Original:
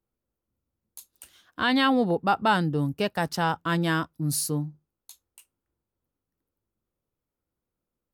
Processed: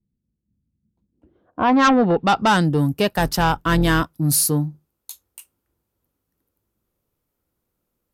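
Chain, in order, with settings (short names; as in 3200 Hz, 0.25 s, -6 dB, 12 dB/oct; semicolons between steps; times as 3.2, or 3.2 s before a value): 3.11–4.02 octaver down 2 oct, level -4 dB; low-pass sweep 190 Hz -> 14000 Hz, 1.04–2.82; added harmonics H 5 -13 dB, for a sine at -9 dBFS; gain +2 dB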